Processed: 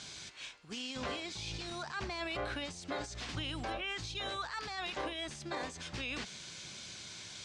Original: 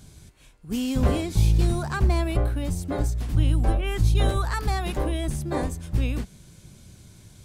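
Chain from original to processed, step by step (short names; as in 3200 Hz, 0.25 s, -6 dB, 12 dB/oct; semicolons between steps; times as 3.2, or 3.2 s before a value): weighting filter ITU-R 468; reverse; compressor 6:1, threshold -36 dBFS, peak gain reduction 14 dB; reverse; limiter -34 dBFS, peak gain reduction 9.5 dB; air absorption 150 m; gain +7 dB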